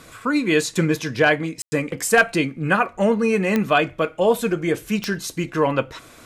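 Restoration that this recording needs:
click removal
ambience match 0:01.62–0:01.72

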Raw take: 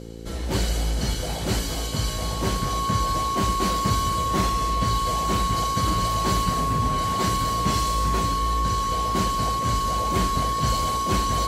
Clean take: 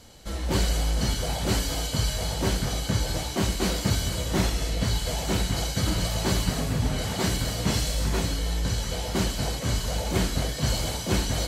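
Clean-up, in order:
hum removal 56.6 Hz, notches 9
notch filter 1,100 Hz, Q 30

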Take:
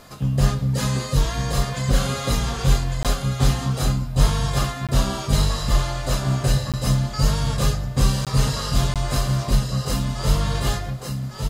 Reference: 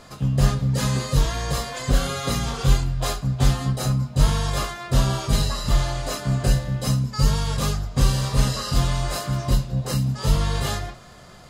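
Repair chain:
repair the gap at 0:03.03/0:04.87/0:06.72/0:08.25/0:08.94, 17 ms
downward expander −21 dBFS, range −21 dB
echo removal 1,153 ms −5.5 dB

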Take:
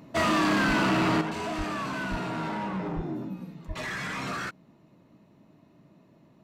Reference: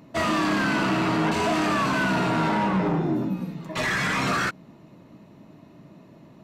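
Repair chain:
clipped peaks rebuilt −20.5 dBFS
high-pass at the plosives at 0:00.67/0:01.57/0:02.10/0:02.95/0:03.67
level correction +9 dB, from 0:01.21

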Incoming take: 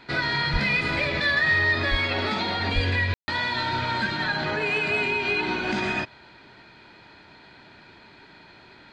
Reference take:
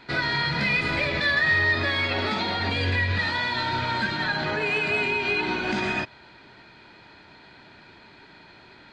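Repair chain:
high-pass at the plosives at 0:00.52/0:01.90/0:02.74/0:03.12
ambience match 0:03.14–0:03.28

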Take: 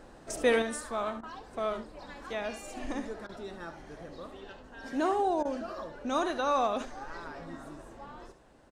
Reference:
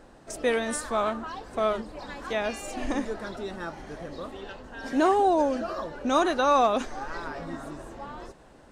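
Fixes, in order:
repair the gap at 0:01.21/0:03.27/0:05.43, 20 ms
echo removal 71 ms −11.5 dB
level correction +7 dB, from 0:00.62

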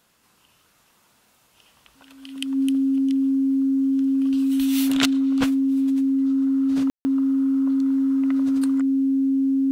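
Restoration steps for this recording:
notch filter 270 Hz, Q 30
ambience match 0:06.90–0:07.05

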